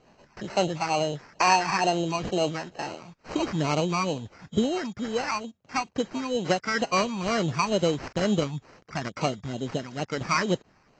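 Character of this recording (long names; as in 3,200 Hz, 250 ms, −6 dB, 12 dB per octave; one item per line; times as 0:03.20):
phaser sweep stages 4, 2.2 Hz, lowest notch 470–4,500 Hz
aliases and images of a low sample rate 3,500 Hz, jitter 0%
AAC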